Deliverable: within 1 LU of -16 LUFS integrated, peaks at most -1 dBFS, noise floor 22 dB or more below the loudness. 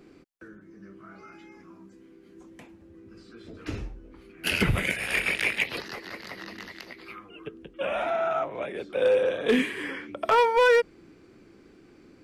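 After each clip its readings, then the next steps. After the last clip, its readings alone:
clipped samples 0.5%; clipping level -15.0 dBFS; loudness -25.5 LUFS; peak level -15.0 dBFS; loudness target -16.0 LUFS
-> clip repair -15 dBFS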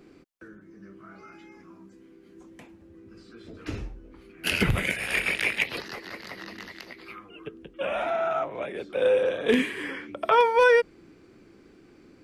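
clipped samples 0.0%; loudness -25.0 LUFS; peak level -6.0 dBFS; loudness target -16.0 LUFS
-> trim +9 dB; peak limiter -1 dBFS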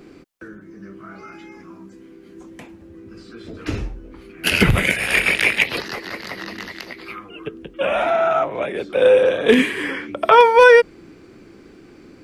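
loudness -16.5 LUFS; peak level -1.0 dBFS; noise floor -46 dBFS

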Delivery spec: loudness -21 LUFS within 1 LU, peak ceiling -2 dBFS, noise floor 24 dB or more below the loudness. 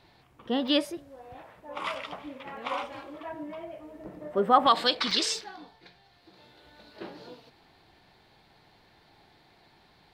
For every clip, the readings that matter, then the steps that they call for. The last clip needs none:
dropouts 4; longest dropout 1.5 ms; loudness -28.5 LUFS; peak level -7.0 dBFS; loudness target -21.0 LUFS
-> interpolate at 0.68/1.94/2.57/5.11 s, 1.5 ms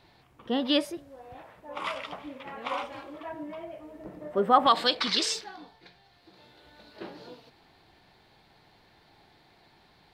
dropouts 0; loudness -28.5 LUFS; peak level -7.0 dBFS; loudness target -21.0 LUFS
-> trim +7.5 dB; peak limiter -2 dBFS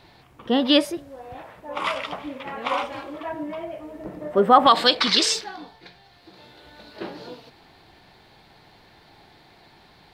loudness -21.5 LUFS; peak level -2.0 dBFS; noise floor -54 dBFS

